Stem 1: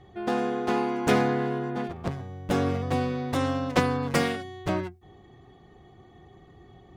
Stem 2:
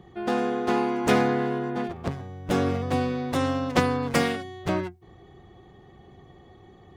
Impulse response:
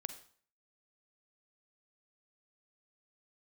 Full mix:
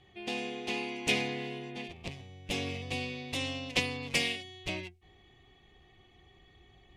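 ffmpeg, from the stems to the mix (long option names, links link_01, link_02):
-filter_complex "[0:a]asubboost=boost=3.5:cutoff=67,volume=-10.5dB[link_01];[1:a]highpass=frequency=2500:width_type=q:width=3.2,volume=-5dB[link_02];[link_01][link_02]amix=inputs=2:normalize=0,lowpass=11000"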